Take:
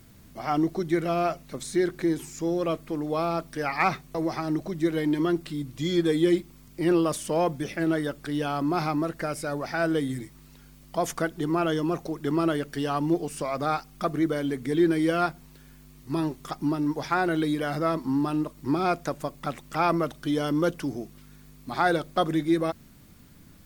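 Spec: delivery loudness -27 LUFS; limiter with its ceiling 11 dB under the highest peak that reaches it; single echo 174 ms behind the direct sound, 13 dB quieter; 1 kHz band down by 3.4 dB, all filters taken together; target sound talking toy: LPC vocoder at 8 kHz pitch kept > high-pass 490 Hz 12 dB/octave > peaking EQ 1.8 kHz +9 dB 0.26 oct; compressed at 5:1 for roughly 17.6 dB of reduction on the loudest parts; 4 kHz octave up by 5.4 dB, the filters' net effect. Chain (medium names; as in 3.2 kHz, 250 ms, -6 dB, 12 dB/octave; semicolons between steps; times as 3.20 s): peaking EQ 1 kHz -5.5 dB; peaking EQ 4 kHz +7 dB; compression 5:1, threshold -39 dBFS; peak limiter -34 dBFS; delay 174 ms -13 dB; LPC vocoder at 8 kHz pitch kept; high-pass 490 Hz 12 dB/octave; peaking EQ 1.8 kHz +9 dB 0.26 oct; trim +22 dB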